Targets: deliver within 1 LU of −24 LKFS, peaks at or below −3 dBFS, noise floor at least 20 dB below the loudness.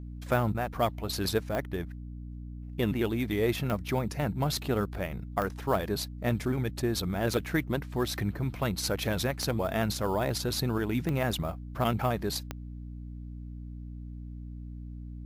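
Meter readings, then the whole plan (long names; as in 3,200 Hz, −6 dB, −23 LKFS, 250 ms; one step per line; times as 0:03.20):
number of clicks 7; mains hum 60 Hz; hum harmonics up to 300 Hz; level of the hum −38 dBFS; integrated loudness −30.5 LKFS; sample peak −13.5 dBFS; target loudness −24.0 LKFS
→ click removal
mains-hum notches 60/120/180/240/300 Hz
level +6.5 dB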